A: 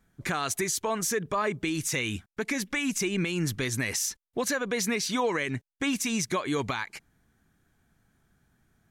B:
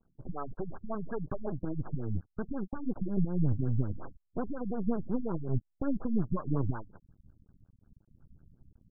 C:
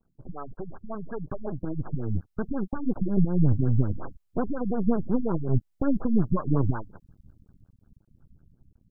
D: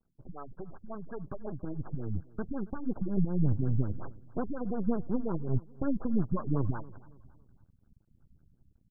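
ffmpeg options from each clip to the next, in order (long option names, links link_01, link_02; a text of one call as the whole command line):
ffmpeg -i in.wav -af "asubboost=boost=6.5:cutoff=170,aeval=exprs='max(val(0),0)':channel_layout=same,afftfilt=real='re*lt(b*sr/1024,250*pow(1700/250,0.5+0.5*sin(2*PI*5.5*pts/sr)))':imag='im*lt(b*sr/1024,250*pow(1700/250,0.5+0.5*sin(2*PI*5.5*pts/sr)))':win_size=1024:overlap=0.75" out.wav
ffmpeg -i in.wav -af "dynaudnorm=framelen=530:gausssize=7:maxgain=7dB" out.wav
ffmpeg -i in.wav -af "aecho=1:1:278|556|834:0.0891|0.0339|0.0129,volume=-6dB" out.wav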